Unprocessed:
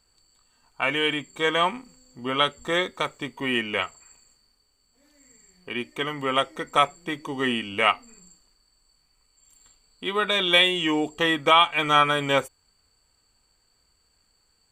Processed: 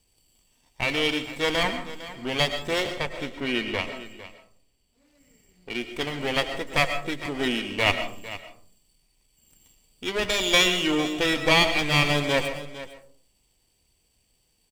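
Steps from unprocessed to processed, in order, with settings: comb filter that takes the minimum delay 0.36 ms; 2.84–5.70 s: treble shelf 4.9 kHz -8 dB; delay 454 ms -15 dB; algorithmic reverb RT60 0.49 s, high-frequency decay 0.35×, pre-delay 80 ms, DRR 9 dB

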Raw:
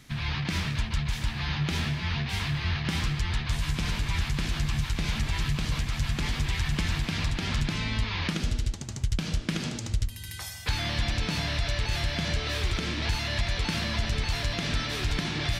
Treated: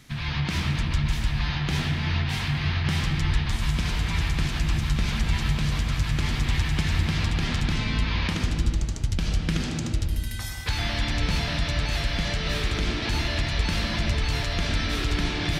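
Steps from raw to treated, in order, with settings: on a send: boxcar filter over 6 samples + reverberation RT60 1.5 s, pre-delay 87 ms, DRR 3 dB; on the sum: trim +1 dB

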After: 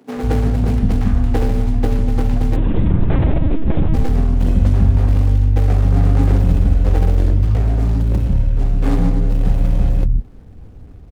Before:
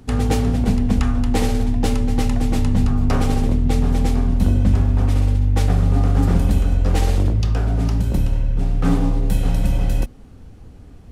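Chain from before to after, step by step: median filter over 41 samples; 2.56–3.94 s: LPC vocoder at 8 kHz pitch kept; bands offset in time highs, lows 150 ms, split 230 Hz; trim +3.5 dB

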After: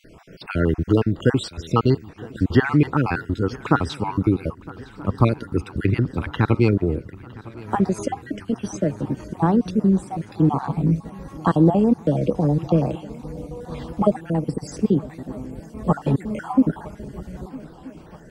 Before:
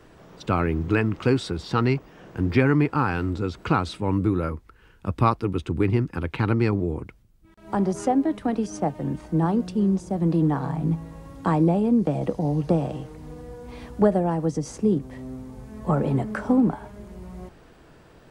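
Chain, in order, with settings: random holes in the spectrogram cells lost 48%; shuffle delay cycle 1279 ms, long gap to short 3:1, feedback 62%, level -21 dB; trim +5 dB

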